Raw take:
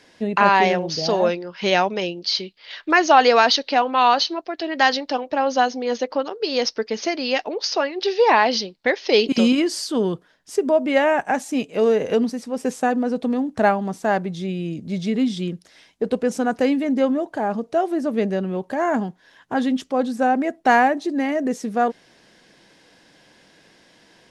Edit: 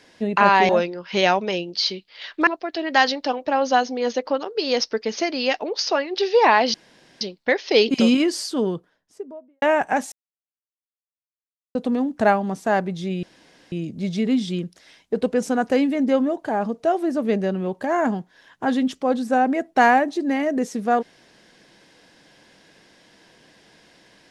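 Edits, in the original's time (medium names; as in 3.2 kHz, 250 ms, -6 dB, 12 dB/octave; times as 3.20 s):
0.69–1.18 s: delete
2.96–4.32 s: delete
8.59 s: insert room tone 0.47 s
9.67–11.00 s: studio fade out
11.50–13.13 s: mute
14.61 s: insert room tone 0.49 s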